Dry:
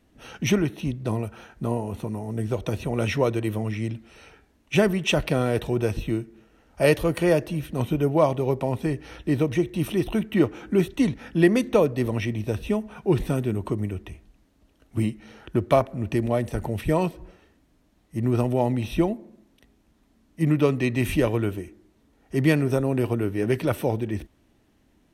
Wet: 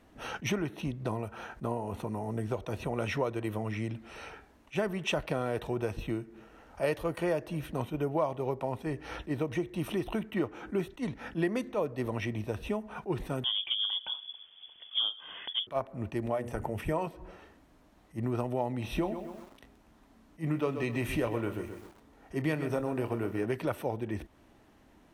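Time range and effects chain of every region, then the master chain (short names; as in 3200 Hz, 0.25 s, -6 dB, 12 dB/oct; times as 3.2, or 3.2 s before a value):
13.44–15.67 low shelf 160 Hz +8 dB + inverted band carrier 3400 Hz
16.3–17.07 bell 4000 Hz -10 dB 0.3 oct + notches 60/120/180/240/300/360/420/480 Hz
18.82–23.45 doubler 26 ms -12 dB + lo-fi delay 0.129 s, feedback 35%, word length 8-bit, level -11.5 dB
whole clip: bell 970 Hz +8 dB 2.1 oct; compressor 2.5:1, threshold -34 dBFS; attack slew limiter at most 370 dB/s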